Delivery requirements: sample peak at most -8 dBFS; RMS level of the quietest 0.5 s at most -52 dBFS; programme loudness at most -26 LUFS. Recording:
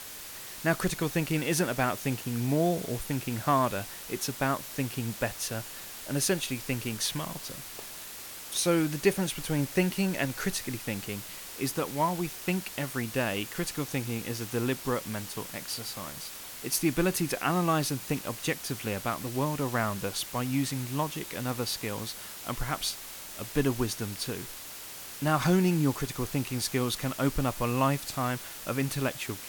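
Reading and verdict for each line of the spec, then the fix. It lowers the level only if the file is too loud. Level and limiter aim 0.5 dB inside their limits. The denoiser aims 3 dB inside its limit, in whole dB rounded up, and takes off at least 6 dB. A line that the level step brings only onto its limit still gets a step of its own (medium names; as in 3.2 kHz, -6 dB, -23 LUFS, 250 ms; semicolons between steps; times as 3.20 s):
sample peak -11.0 dBFS: pass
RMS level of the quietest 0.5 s -43 dBFS: fail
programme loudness -30.5 LUFS: pass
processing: noise reduction 12 dB, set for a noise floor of -43 dBFS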